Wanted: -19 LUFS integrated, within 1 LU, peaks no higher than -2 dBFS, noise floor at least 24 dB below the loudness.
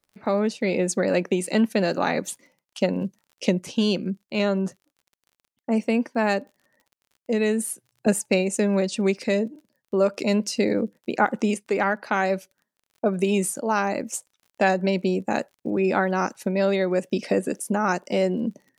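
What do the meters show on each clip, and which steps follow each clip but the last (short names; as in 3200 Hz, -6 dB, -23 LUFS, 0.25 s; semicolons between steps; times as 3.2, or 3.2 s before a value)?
ticks 32/s; loudness -24.5 LUFS; peak -5.5 dBFS; loudness target -19.0 LUFS
-> de-click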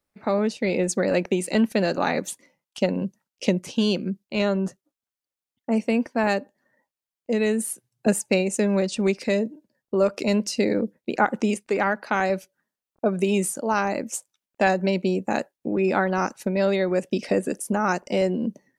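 ticks 0/s; loudness -24.5 LUFS; peak -5.5 dBFS; loudness target -19.0 LUFS
-> gain +5.5 dB; limiter -2 dBFS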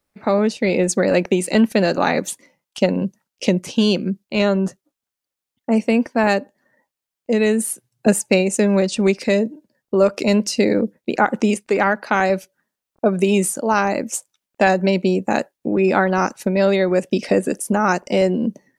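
loudness -19.0 LUFS; peak -2.0 dBFS; noise floor -86 dBFS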